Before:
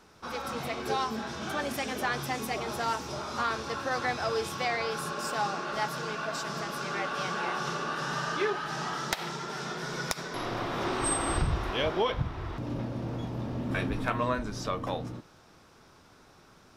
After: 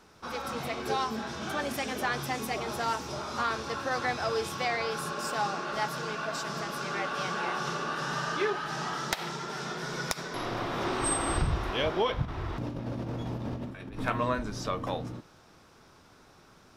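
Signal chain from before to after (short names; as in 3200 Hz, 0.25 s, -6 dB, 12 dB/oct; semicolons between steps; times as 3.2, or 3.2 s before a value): 12.22–14 negative-ratio compressor -35 dBFS, ratio -0.5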